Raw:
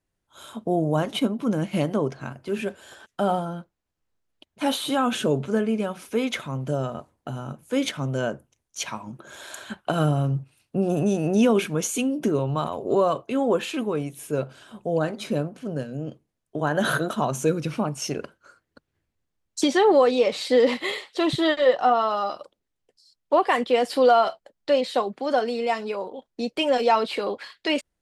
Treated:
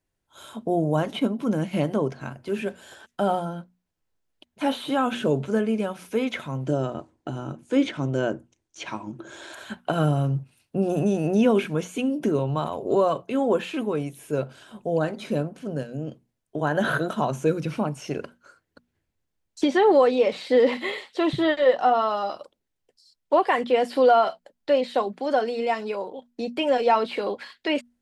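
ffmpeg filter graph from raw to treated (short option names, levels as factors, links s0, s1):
-filter_complex "[0:a]asettb=1/sr,asplit=3[s0][s1][s2];[s0]atrim=end=6.664[s3];[s1]atrim=start=6.66:end=9.53,asetpts=PTS-STARTPTS,afade=t=in:d=0.004:c=qsin,afade=t=out:st=2.866:d=0.004:c=qsin,lowpass=f=8400:w=0.5412,lowpass=f=8400:w=1.3066,equalizer=f=330:t=o:w=0.35:g=11.5[s4];[s2]atrim=start=9.526[s5];[s3][s4]acrossfade=d=0.004:c1=hsin:c2=qsin[s6];[s6][s5]acrossfade=d=0.004:c1=qsin:c2=hsin,bandreject=f=60:t=h:w=6,bandreject=f=120:t=h:w=6,bandreject=f=180:t=h:w=6,bandreject=f=240:t=h:w=6,acrossover=split=3100[s7][s8];[s8]acompressor=threshold=0.00631:ratio=4:attack=1:release=60[s9];[s7][s9]amix=inputs=2:normalize=0,bandreject=f=1200:w=15"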